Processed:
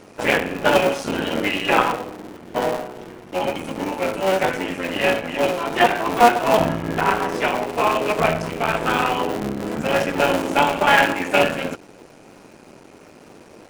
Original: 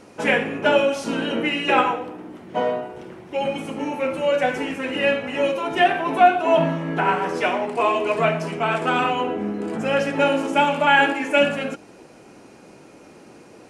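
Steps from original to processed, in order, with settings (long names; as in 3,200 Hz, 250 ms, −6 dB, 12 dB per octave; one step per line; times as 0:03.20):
sub-harmonics by changed cycles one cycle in 3, muted
level +2.5 dB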